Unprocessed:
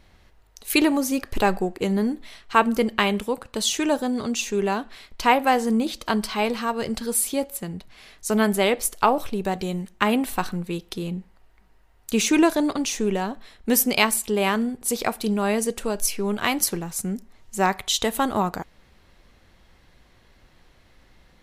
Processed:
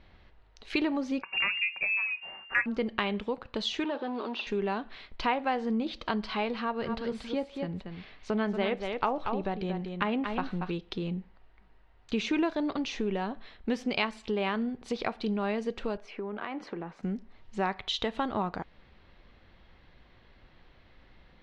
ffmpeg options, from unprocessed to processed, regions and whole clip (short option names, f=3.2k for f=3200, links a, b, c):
-filter_complex "[0:a]asettb=1/sr,asplit=3[a][b][c];[a]atrim=end=1.224[d];[b]atrim=start=1.22:end=2.66,asetpts=PTS-STARTPTS,afade=t=in:d=0.004:c=qsin,afade=t=out:st=1.436:d=0.004:c=qsin,lowpass=f=2.4k:t=q:w=0.5098,lowpass=f=2.4k:t=q:w=0.6013,lowpass=f=2.4k:t=q:w=0.9,lowpass=f=2.4k:t=q:w=2.563,afreqshift=-2800,bandreject=f=60:t=h:w=6,bandreject=f=120:t=h:w=6,bandreject=f=180:t=h:w=6,aecho=1:1:5.3:0.5,atrim=end_sample=63504[e];[c]atrim=start=2.656[f];[d][e]acrossfade=d=0.004:c1=hsin:c2=qsin[g];[g][f]acrossfade=d=0.004:c1=qsin:c2=hsin,asettb=1/sr,asplit=3[h][i][j];[h]atrim=end=3.844[k];[i]atrim=start=3.84:end=4.47,asetpts=PTS-STARTPTS,afade=t=in:d=0.004:c=qsin,afade=t=out:st=0.626:d=0.004:c=qsin,acrusher=bits=8:dc=4:mix=0:aa=0.000001,asoftclip=type=hard:threshold=-23.5dB,highpass=f=290:w=0.5412,highpass=f=290:w=1.3066,equalizer=f=350:t=q:w=4:g=4,equalizer=f=960:t=q:w=4:g=5,equalizer=f=2.1k:t=q:w=4:g=-7,lowpass=f=4.1k:w=0.5412,lowpass=f=4.1k:w=1.3066[l];[j]atrim=start=4.466[m];[k][l]acrossfade=d=0.004:c1=hsin:c2=qsin[n];[n][m]acrossfade=d=0.004:c1=qsin:c2=hsin,asettb=1/sr,asplit=3[o][p][q];[o]atrim=end=6.604[r];[p]atrim=start=6.6:end=10.71,asetpts=PTS-STARTPTS,afade=t=in:d=0.004:c=qsin,afade=t=out:st=4.106:d=0.004:c=qsin,highshelf=f=5.6k:g=-8,aecho=1:1:233:0.398,atrim=end_sample=181251[s];[q]atrim=start=10.706[t];[r][s]acrossfade=d=0.004:c1=hsin:c2=qsin[u];[u][t]acrossfade=d=0.004:c1=qsin:c2=hsin,asettb=1/sr,asplit=3[v][w][x];[v]atrim=end=15.974[y];[w]atrim=start=15.97:end=17.03,asetpts=PTS-STARTPTS,afade=t=in:d=0.004:c=qsin,afade=t=out:st=1.056:d=0.004:c=qsin,acrossover=split=200 2300:gain=0.0891 1 0.126[z][aa][ab];[z][aa][ab]amix=inputs=3:normalize=0,acompressor=threshold=-29dB:ratio=6:attack=3.2:release=140:knee=1:detection=peak[ac];[x]atrim=start=17.026[ad];[y][ac]acrossfade=d=0.004:c1=hsin:c2=qsin[ae];[ae][ad]acrossfade=d=0.004:c1=qsin:c2=hsin,lowpass=f=4.1k:w=0.5412,lowpass=f=4.1k:w=1.3066,acompressor=threshold=-29dB:ratio=2,volume=-2dB"